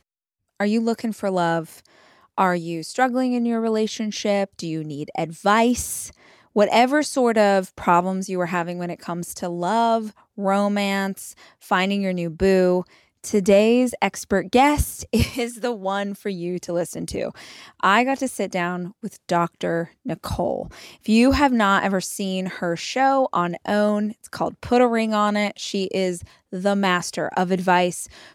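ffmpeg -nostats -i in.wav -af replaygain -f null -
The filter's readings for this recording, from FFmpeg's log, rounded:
track_gain = +1.2 dB
track_peak = 0.519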